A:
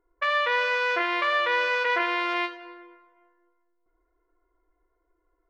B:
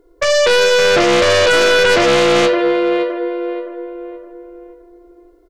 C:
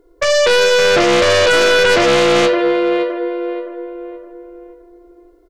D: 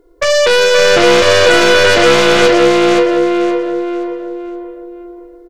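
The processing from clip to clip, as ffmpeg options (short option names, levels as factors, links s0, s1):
-filter_complex "[0:a]equalizer=f=250:t=o:w=1:g=6,equalizer=f=500:t=o:w=1:g=9,equalizer=f=1000:t=o:w=1:g=-9,equalizer=f=2000:t=o:w=1:g=-5,equalizer=f=4000:t=o:w=1:g=6,asplit=2[s0][s1];[s1]adelay=567,lowpass=f=1400:p=1,volume=0.473,asplit=2[s2][s3];[s3]adelay=567,lowpass=f=1400:p=1,volume=0.44,asplit=2[s4][s5];[s5]adelay=567,lowpass=f=1400:p=1,volume=0.44,asplit=2[s6][s7];[s7]adelay=567,lowpass=f=1400:p=1,volume=0.44,asplit=2[s8][s9];[s9]adelay=567,lowpass=f=1400:p=1,volume=0.44[s10];[s0][s2][s4][s6][s8][s10]amix=inputs=6:normalize=0,aeval=exprs='0.376*sin(PI/2*4.47*val(0)/0.376)':c=same"
-af anull
-filter_complex "[0:a]aeval=exprs='0.398*(cos(1*acos(clip(val(0)/0.398,-1,1)))-cos(1*PI/2))+0.00562*(cos(6*acos(clip(val(0)/0.398,-1,1)))-cos(6*PI/2))':c=same,asplit=2[s0][s1];[s1]aecho=0:1:524|1048|1572|2096:0.631|0.17|0.046|0.0124[s2];[s0][s2]amix=inputs=2:normalize=0,volume=1.26"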